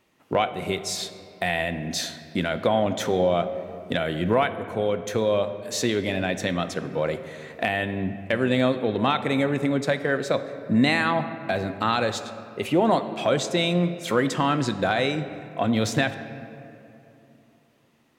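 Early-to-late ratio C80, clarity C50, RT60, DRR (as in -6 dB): 12.0 dB, 11.0 dB, 2.8 s, 10.0 dB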